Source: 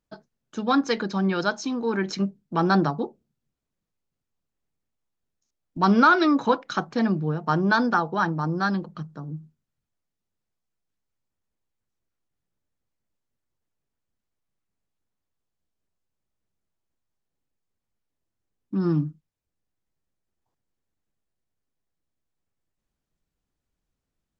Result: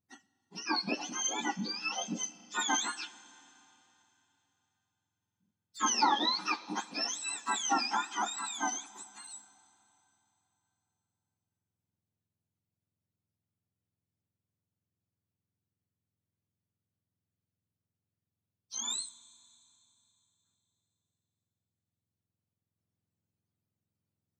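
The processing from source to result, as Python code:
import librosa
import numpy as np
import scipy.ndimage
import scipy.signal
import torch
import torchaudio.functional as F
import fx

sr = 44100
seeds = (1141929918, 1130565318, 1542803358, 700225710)

y = fx.octave_mirror(x, sr, pivot_hz=1100.0)
y = fx.rev_schroeder(y, sr, rt60_s=3.4, comb_ms=29, drr_db=18.0)
y = y * 10.0 ** (-6.5 / 20.0)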